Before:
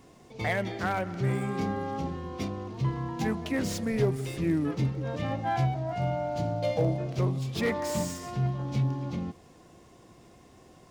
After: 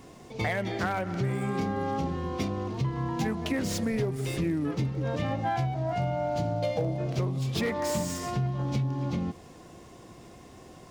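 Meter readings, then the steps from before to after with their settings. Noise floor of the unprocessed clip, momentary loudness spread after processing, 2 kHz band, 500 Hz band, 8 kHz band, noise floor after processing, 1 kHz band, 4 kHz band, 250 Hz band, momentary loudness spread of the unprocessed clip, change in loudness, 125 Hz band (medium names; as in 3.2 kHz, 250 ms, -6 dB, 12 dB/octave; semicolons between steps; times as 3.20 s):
-55 dBFS, 20 LU, 0.0 dB, 0.0 dB, +2.0 dB, -50 dBFS, +1.0 dB, +2.0 dB, +0.5 dB, 7 LU, +0.5 dB, 0.0 dB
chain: compression, threshold -31 dBFS, peak gain reduction 10.5 dB; trim +5.5 dB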